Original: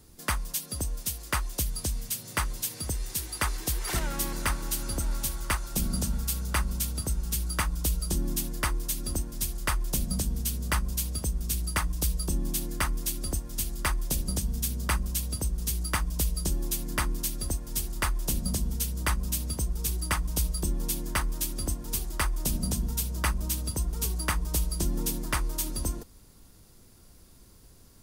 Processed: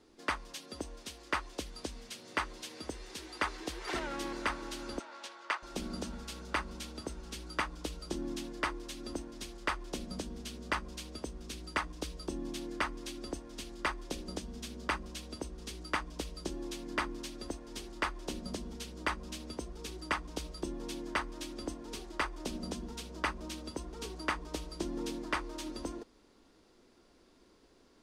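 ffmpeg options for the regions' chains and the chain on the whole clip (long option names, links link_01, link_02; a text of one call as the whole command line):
ffmpeg -i in.wav -filter_complex "[0:a]asettb=1/sr,asplit=3[link_01][link_02][link_03];[link_01]atrim=end=4.994[link_04];[link_02]atrim=start=4.99:end=5.63,asetpts=PTS-STARTPTS,afade=type=in:duration=0.004:curve=qsin,afade=type=out:start_time=0.636:duration=0.004:curve=qsin,highpass=630,adynamicsmooth=sensitivity=6.5:basefreq=4300[link_05];[link_03]atrim=start=5.626[link_06];[link_04][link_05]acrossfade=duration=0.004:curve1=hsin:curve2=qsin[link_07];[link_07][link_06]acrossfade=duration=0.004:curve1=qsin:curve2=hsin,lowpass=4000,lowshelf=frequency=200:width_type=q:width=1.5:gain=-13.5,volume=-2.5dB" out.wav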